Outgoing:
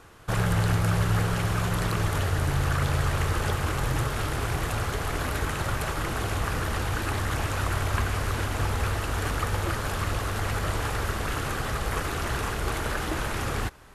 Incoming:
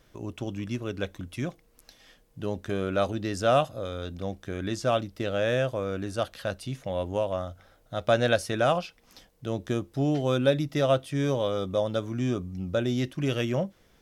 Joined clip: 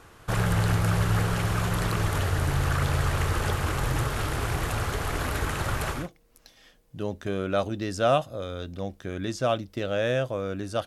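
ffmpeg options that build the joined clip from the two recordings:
ffmpeg -i cue0.wav -i cue1.wav -filter_complex "[0:a]apad=whole_dur=10.86,atrim=end=10.86,atrim=end=6.09,asetpts=PTS-STARTPTS[link_01];[1:a]atrim=start=1.32:end=6.29,asetpts=PTS-STARTPTS[link_02];[link_01][link_02]acrossfade=duration=0.2:curve1=tri:curve2=tri" out.wav

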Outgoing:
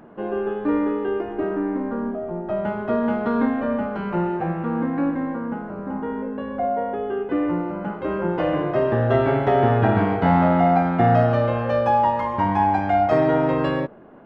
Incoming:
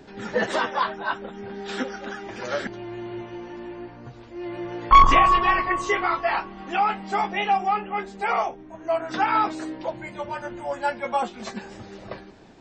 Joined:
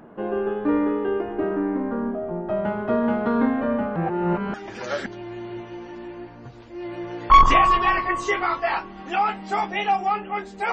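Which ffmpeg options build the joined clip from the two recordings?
ffmpeg -i cue0.wav -i cue1.wav -filter_complex "[0:a]apad=whole_dur=10.72,atrim=end=10.72,asplit=2[link_01][link_02];[link_01]atrim=end=3.962[link_03];[link_02]atrim=start=3.958:end=4.542,asetpts=PTS-STARTPTS,areverse[link_04];[1:a]atrim=start=2.148:end=8.33[link_05];[link_03][link_04]acrossfade=duration=0.004:curve1=hsin:curve2=hsin[link_06];[link_06][link_05]acrossfade=duration=0.004:curve1=hsin:curve2=hsin" out.wav

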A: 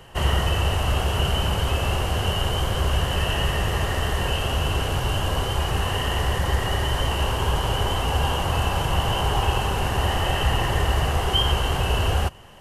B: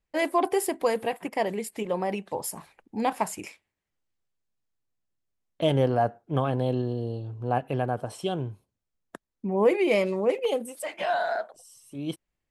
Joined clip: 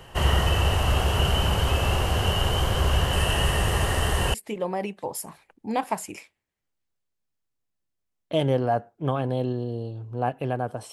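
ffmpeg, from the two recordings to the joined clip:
ffmpeg -i cue0.wav -i cue1.wav -filter_complex "[0:a]asettb=1/sr,asplit=3[link_01][link_02][link_03];[link_01]atrim=end=3.134[link_04];[link_02]atrim=start=3.13:end=4.34,asetpts=PTS-STARTPTS,afade=type=in:duration=0.004:curve=qsin,afade=type=out:start_time=1.206:duration=0.004:curve=qsin,equalizer=frequency=9200:width=2.1:gain=7.5[link_05];[link_03]atrim=start=4.336[link_06];[link_04][link_05]acrossfade=duration=0.004:curve1=hsin:curve2=qsin[link_07];[link_07][link_06]acrossfade=duration=0.004:curve1=qsin:curve2=hsin,apad=whole_dur=10.92,atrim=end=10.92,atrim=end=4.342[link_08];[1:a]atrim=start=1.628:end=8.21[link_09];[link_08][link_09]acrossfade=duration=0.004:curve1=hsin:curve2=hsin" out.wav

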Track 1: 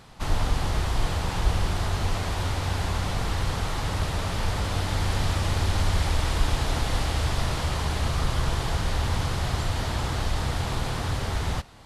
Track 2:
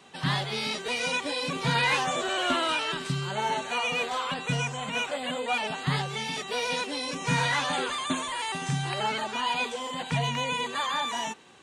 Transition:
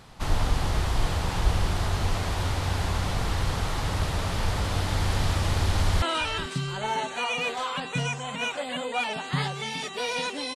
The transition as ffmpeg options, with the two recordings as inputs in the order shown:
ffmpeg -i cue0.wav -i cue1.wav -filter_complex "[0:a]apad=whole_dur=10.55,atrim=end=10.55,atrim=end=6.022[link_01];[1:a]atrim=start=2.558:end=7.09[link_02];[link_01][link_02]acrossfade=duration=0.004:curve1=hsin:curve2=hsin,asplit=2[link_03][link_04];[link_04]afade=type=in:start_time=5.76:duration=0.01,afade=type=out:start_time=6.02:duration=0.01,aecho=0:1:440|880:0.177828|0.0266742[link_05];[link_03][link_05]amix=inputs=2:normalize=0" out.wav

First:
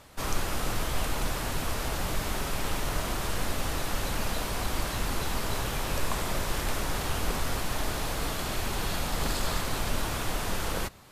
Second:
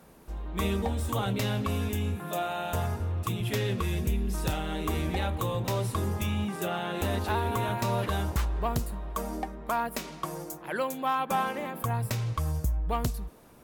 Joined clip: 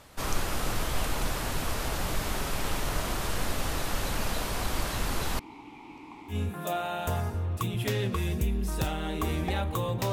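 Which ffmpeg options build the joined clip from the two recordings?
ffmpeg -i cue0.wav -i cue1.wav -filter_complex "[0:a]asettb=1/sr,asplit=3[link_01][link_02][link_03];[link_01]atrim=end=5.394[link_04];[link_02]atrim=start=5.39:end=6.36,asetpts=PTS-STARTPTS,afade=type=in:duration=0.004:curve=qsin,afade=type=out:start_time=0.966:duration=0.004:curve=qsin,asplit=3[link_05][link_06][link_07];[link_05]bandpass=frequency=300:width_type=q:width=8,volume=0dB[link_08];[link_06]bandpass=frequency=870:width_type=q:width=8,volume=-6dB[link_09];[link_07]bandpass=frequency=2240:width_type=q:width=8,volume=-9dB[link_10];[link_08][link_09][link_10]amix=inputs=3:normalize=0[link_11];[link_03]atrim=start=6.356[link_12];[link_04][link_11]acrossfade=duration=0.004:curve1=hsin:curve2=qsin[link_13];[link_13][link_12]acrossfade=duration=0.004:curve1=qsin:curve2=hsin,apad=whole_dur=10.12,atrim=end=10.12,atrim=end=6.36,asetpts=PTS-STARTPTS[link_14];[1:a]atrim=start=1.94:end=5.78,asetpts=PTS-STARTPTS[link_15];[link_14][link_15]acrossfade=duration=0.08:curve1=tri:curve2=tri" out.wav

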